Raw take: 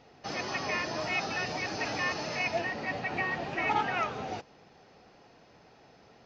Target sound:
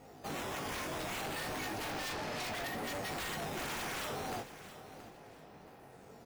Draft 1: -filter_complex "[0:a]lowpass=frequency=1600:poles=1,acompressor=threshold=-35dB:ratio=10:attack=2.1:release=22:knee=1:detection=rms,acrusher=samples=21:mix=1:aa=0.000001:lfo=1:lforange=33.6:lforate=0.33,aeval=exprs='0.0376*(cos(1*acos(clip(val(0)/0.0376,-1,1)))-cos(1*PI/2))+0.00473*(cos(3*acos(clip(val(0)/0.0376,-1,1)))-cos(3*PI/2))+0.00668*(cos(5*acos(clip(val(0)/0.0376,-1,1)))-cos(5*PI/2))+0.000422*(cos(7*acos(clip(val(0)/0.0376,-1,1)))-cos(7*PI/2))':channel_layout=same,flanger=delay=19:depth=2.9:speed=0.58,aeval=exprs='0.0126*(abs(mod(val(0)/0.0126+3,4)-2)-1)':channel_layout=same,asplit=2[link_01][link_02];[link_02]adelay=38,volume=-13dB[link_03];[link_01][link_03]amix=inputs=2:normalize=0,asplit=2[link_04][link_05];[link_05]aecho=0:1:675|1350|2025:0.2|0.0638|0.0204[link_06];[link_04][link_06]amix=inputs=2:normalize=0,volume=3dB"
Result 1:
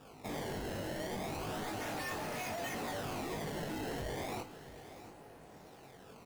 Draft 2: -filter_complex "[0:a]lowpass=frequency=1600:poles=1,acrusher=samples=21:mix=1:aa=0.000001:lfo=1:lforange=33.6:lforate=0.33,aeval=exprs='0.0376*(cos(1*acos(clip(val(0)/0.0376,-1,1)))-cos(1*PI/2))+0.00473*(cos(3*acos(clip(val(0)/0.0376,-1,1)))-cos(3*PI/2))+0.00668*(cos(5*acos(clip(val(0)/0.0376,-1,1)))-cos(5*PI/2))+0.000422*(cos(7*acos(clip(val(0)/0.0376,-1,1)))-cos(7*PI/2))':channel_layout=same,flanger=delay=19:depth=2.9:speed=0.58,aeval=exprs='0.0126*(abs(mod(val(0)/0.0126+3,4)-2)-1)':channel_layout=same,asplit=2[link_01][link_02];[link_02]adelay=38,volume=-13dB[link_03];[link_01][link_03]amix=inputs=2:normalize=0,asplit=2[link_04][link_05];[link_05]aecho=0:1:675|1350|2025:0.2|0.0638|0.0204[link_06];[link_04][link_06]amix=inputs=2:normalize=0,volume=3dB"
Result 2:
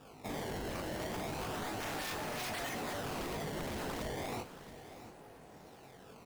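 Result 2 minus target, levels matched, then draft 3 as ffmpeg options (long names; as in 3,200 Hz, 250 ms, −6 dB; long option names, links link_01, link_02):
sample-and-hold swept by an LFO: distortion +12 dB
-filter_complex "[0:a]lowpass=frequency=1600:poles=1,acrusher=samples=6:mix=1:aa=0.000001:lfo=1:lforange=9.6:lforate=0.33,aeval=exprs='0.0376*(cos(1*acos(clip(val(0)/0.0376,-1,1)))-cos(1*PI/2))+0.00473*(cos(3*acos(clip(val(0)/0.0376,-1,1)))-cos(3*PI/2))+0.00668*(cos(5*acos(clip(val(0)/0.0376,-1,1)))-cos(5*PI/2))+0.000422*(cos(7*acos(clip(val(0)/0.0376,-1,1)))-cos(7*PI/2))':channel_layout=same,flanger=delay=19:depth=2.9:speed=0.58,aeval=exprs='0.0126*(abs(mod(val(0)/0.0126+3,4)-2)-1)':channel_layout=same,asplit=2[link_01][link_02];[link_02]adelay=38,volume=-13dB[link_03];[link_01][link_03]amix=inputs=2:normalize=0,asplit=2[link_04][link_05];[link_05]aecho=0:1:675|1350|2025:0.2|0.0638|0.0204[link_06];[link_04][link_06]amix=inputs=2:normalize=0,volume=3dB"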